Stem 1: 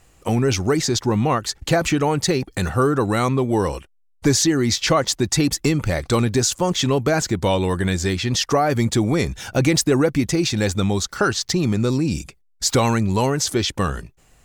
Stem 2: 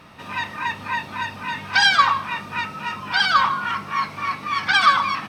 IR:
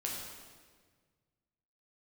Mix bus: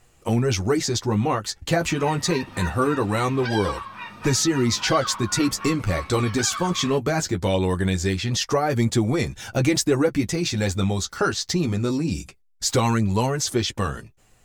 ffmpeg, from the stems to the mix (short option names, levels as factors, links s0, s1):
-filter_complex "[0:a]volume=1.06[s0];[1:a]acompressor=threshold=0.0631:ratio=4,adelay=1700,volume=0.668[s1];[s0][s1]amix=inputs=2:normalize=0,flanger=delay=8.2:depth=4:regen=-24:speed=0.22:shape=triangular"